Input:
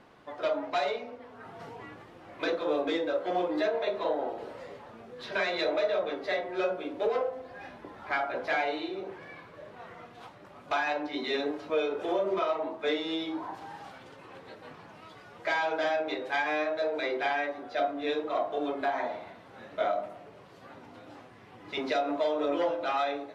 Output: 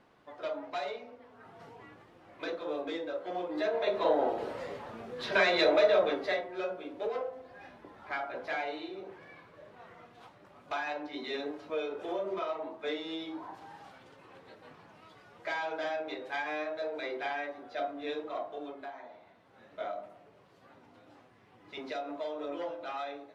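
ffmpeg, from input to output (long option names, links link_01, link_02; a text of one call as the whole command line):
ffmpeg -i in.wav -af "volume=12dB,afade=type=in:start_time=3.48:duration=0.75:silence=0.281838,afade=type=out:start_time=6.05:duration=0.44:silence=0.316228,afade=type=out:start_time=18.2:duration=0.82:silence=0.281838,afade=type=in:start_time=19.02:duration=0.76:silence=0.398107" out.wav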